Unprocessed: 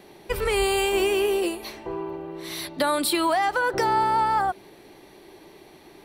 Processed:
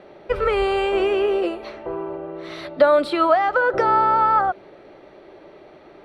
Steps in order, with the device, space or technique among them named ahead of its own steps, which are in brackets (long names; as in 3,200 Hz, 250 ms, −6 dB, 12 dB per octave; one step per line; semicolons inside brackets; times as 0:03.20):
inside a cardboard box (low-pass filter 3,000 Hz 12 dB per octave; hollow resonant body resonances 580/1,300 Hz, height 12 dB, ringing for 20 ms)